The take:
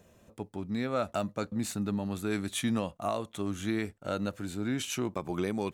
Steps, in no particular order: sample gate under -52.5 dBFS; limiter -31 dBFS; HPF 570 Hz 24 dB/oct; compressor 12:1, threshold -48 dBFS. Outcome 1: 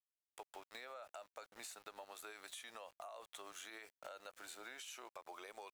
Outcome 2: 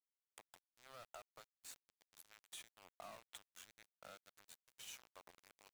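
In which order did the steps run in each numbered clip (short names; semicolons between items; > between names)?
HPF > sample gate > limiter > compressor; limiter > compressor > HPF > sample gate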